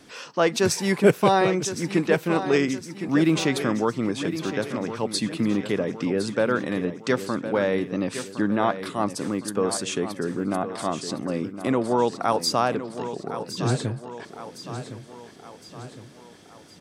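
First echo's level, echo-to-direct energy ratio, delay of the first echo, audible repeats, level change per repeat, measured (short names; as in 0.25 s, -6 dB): -11.0 dB, -10.0 dB, 1.062 s, 4, -6.0 dB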